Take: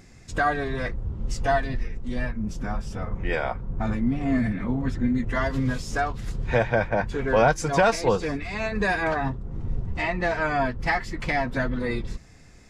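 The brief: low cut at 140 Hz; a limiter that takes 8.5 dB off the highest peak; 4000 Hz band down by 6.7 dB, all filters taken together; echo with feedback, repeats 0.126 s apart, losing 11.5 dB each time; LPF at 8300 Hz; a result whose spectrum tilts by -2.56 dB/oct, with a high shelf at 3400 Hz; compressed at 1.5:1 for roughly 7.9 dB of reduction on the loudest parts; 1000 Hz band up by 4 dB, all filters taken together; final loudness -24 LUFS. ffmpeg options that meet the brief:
-af "highpass=140,lowpass=8.3k,equalizer=f=1k:t=o:g=6.5,highshelf=f=3.4k:g=-4,equalizer=f=4k:t=o:g=-6,acompressor=threshold=-35dB:ratio=1.5,alimiter=limit=-21.5dB:level=0:latency=1,aecho=1:1:126|252|378:0.266|0.0718|0.0194,volume=8.5dB"

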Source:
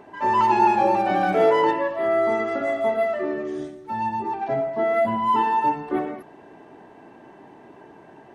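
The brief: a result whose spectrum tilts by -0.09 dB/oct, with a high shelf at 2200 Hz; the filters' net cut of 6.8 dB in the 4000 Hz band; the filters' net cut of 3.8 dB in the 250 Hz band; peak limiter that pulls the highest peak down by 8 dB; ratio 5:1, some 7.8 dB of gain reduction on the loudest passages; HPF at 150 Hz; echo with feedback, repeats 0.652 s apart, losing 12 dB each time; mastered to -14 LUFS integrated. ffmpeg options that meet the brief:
-af "highpass=150,equalizer=f=250:t=o:g=-5,highshelf=f=2.2k:g=-3,equalizer=f=4k:t=o:g=-7,acompressor=threshold=-23dB:ratio=5,alimiter=limit=-23dB:level=0:latency=1,aecho=1:1:652|1304|1956:0.251|0.0628|0.0157,volume=16dB"

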